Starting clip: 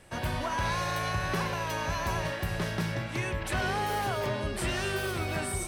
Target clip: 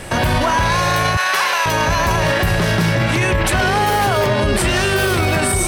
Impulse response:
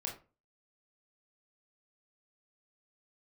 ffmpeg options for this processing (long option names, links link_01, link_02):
-filter_complex "[0:a]asettb=1/sr,asplit=3[link_01][link_02][link_03];[link_01]atrim=end=1.174[link_04];[link_02]atrim=start=1.17:end=1.66,asetpts=PTS-STARTPTS,afade=type=in:duration=0.004:curve=qsin,afade=type=out:start_time=0.486:duration=0.004:curve=qsin,highpass=970[link_05];[link_03]atrim=start=1.656[link_06];[link_04][link_05]acrossfade=duration=0.004:curve1=hsin:curve2=qsin[link_07];[link_07][link_06]acrossfade=duration=0.004:curve1=qsin:curve2=hsin,alimiter=level_in=31dB:limit=-1dB:release=50:level=0:latency=1,volume=-7dB"